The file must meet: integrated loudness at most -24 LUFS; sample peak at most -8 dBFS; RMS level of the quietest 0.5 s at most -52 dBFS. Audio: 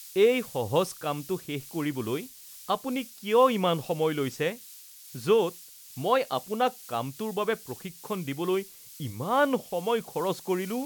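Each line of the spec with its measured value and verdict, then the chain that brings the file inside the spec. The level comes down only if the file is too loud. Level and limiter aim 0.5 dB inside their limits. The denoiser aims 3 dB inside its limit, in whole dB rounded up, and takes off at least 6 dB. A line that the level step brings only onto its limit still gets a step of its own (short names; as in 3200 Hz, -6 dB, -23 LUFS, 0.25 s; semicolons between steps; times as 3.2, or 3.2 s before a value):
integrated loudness -28.5 LUFS: OK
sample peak -10.0 dBFS: OK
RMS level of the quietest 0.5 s -48 dBFS: fail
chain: denoiser 7 dB, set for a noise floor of -48 dBFS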